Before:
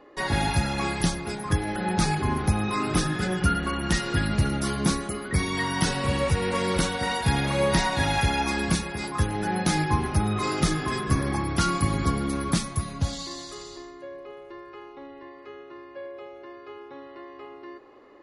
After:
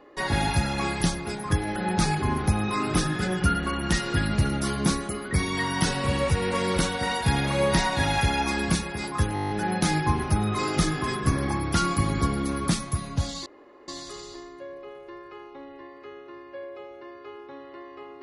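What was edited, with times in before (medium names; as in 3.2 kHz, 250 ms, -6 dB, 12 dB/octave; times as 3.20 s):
9.34 s: stutter 0.02 s, 9 plays
13.30 s: insert room tone 0.42 s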